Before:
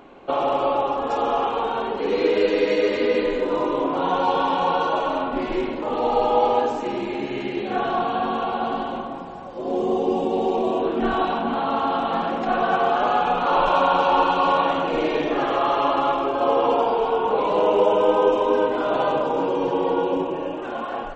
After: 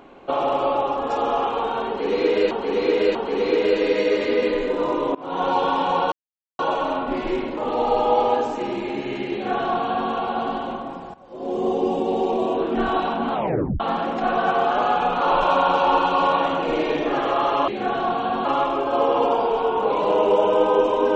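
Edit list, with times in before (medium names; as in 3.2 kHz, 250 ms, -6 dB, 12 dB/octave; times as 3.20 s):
1.87–2.51 s: loop, 3 plays
3.87–4.19 s: fade in, from -23 dB
4.84 s: insert silence 0.47 s
7.58–8.35 s: copy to 15.93 s
9.39–9.93 s: fade in, from -15.5 dB
11.58 s: tape stop 0.47 s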